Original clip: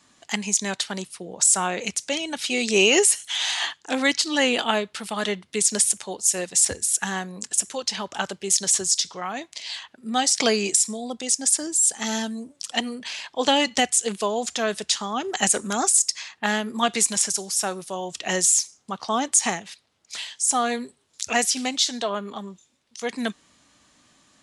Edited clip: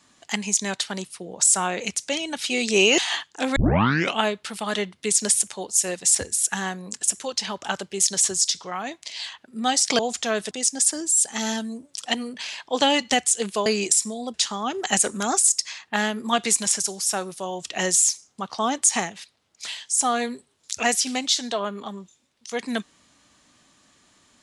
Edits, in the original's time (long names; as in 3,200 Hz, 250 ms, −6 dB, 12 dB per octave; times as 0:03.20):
0:02.98–0:03.48: remove
0:04.06: tape start 0.64 s
0:10.49–0:11.17: swap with 0:14.32–0:14.84